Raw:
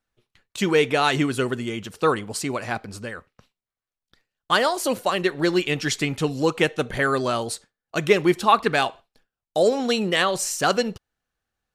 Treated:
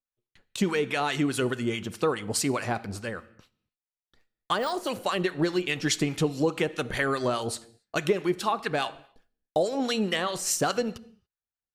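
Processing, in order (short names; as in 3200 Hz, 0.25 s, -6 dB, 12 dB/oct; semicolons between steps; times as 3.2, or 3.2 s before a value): 4.58–5.05 de-esser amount 75%; gate with hold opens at -47 dBFS; compressor, threshold -23 dBFS, peak gain reduction 12 dB; harmonic tremolo 4.8 Hz, depth 70%, crossover 960 Hz; on a send: reverb, pre-delay 10 ms, DRR 17.5 dB; on the sum: gain +3.5 dB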